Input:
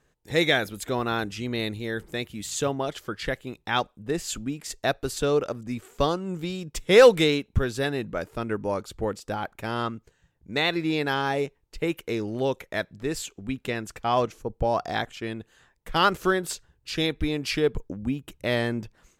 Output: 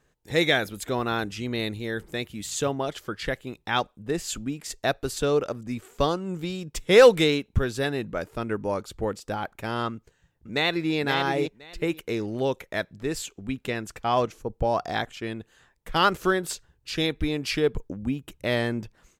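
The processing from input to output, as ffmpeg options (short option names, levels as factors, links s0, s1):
-filter_complex "[0:a]asplit=2[s0][s1];[s1]afade=t=in:st=9.93:d=0.01,afade=t=out:st=10.95:d=0.01,aecho=0:1:520|1040|1560:0.501187|0.0751781|0.0112767[s2];[s0][s2]amix=inputs=2:normalize=0"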